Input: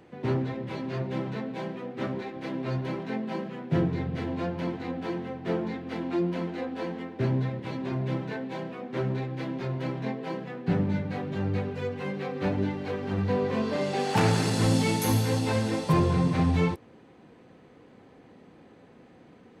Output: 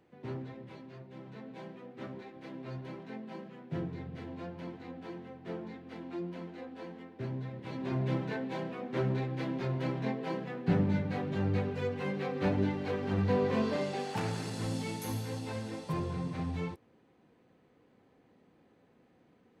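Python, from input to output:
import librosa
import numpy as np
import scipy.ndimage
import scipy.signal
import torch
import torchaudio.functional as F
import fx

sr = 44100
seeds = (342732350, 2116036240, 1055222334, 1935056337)

y = fx.gain(x, sr, db=fx.line((0.63, -12.5), (1.07, -19.0), (1.5, -11.5), (7.42, -11.5), (7.96, -2.0), (13.65, -2.0), (14.22, -12.0)))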